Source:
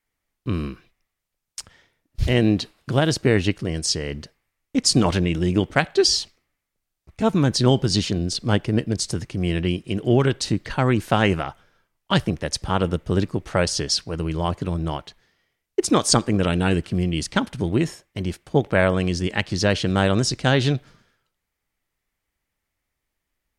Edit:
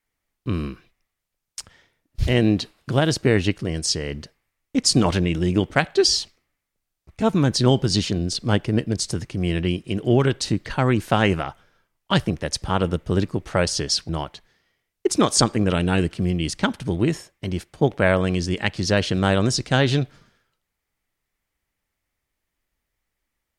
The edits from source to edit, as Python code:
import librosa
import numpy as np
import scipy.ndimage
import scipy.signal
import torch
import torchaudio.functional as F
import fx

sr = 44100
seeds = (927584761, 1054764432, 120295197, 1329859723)

y = fx.edit(x, sr, fx.cut(start_s=14.09, length_s=0.73), tone=tone)